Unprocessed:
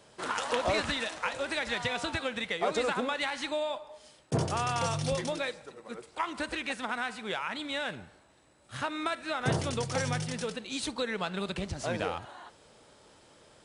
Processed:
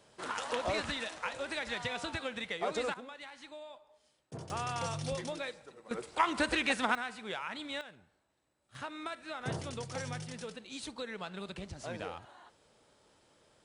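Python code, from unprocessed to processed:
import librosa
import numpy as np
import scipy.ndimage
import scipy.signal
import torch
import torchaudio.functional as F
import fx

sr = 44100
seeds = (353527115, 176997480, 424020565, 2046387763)

y = fx.gain(x, sr, db=fx.steps((0.0, -5.0), (2.94, -16.0), (4.5, -6.0), (5.91, 4.0), (6.95, -5.0), (7.81, -16.0), (8.75, -8.5)))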